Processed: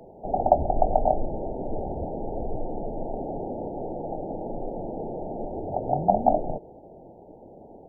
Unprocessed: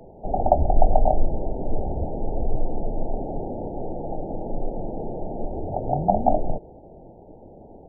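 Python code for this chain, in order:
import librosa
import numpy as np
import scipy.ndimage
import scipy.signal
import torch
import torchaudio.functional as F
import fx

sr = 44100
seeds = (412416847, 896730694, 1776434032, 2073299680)

y = fx.low_shelf(x, sr, hz=110.0, db=-11.0)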